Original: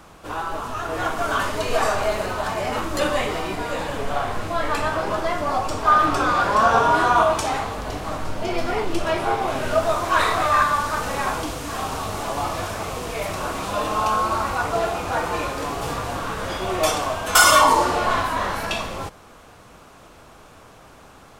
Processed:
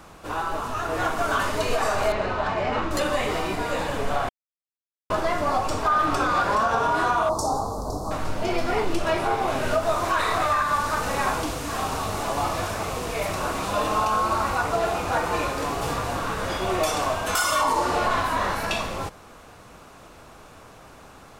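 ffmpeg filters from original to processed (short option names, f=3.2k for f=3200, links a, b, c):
-filter_complex "[0:a]asettb=1/sr,asplit=3[a][b][c];[a]atrim=end=2.124[d];[b]atrim=start=2.12:end=2.91,asetpts=PTS-STARTPTS,afade=t=in:d=0.004:c=qsin,afade=t=out:st=0.786:d=0.004:c=qsin,lowpass=3.6k[e];[c]atrim=start=2.906[f];[d][e]acrossfade=d=0.004:c1=hsin:c2=qsin[g];[g][f]acrossfade=d=0.004:c1=qsin:c2=hsin,asettb=1/sr,asplit=3[h][i][j];[h]atrim=end=7.294[k];[i]atrim=start=7.29:end=8.11,asetpts=PTS-STARTPTS,afade=t=in:d=0.004:c=qsin,afade=t=out:st=0.816:d=0.004:c=qsin,asuperstop=centerf=2300:order=8:qfactor=0.67[l];[j]atrim=start=8.106[m];[k][l]acrossfade=d=0.004:c1=hsin:c2=qsin[n];[n][m]acrossfade=d=0.004:c1=qsin:c2=hsin,asplit=3[o][p][q];[o]atrim=end=4.29,asetpts=PTS-STARTPTS,afade=t=out:st=4.286:d=0.004:c=hsin[r];[p]atrim=start=4.29:end=5.1,asetpts=PTS-STARTPTS,volume=0[s];[q]atrim=start=5.1,asetpts=PTS-STARTPTS,afade=t=in:d=0.004:c=hsin[t];[r][s][t]concat=n=3:v=0:a=1,bandreject=f=3.2k:w=27,alimiter=limit=-13dB:level=0:latency=1:release=156"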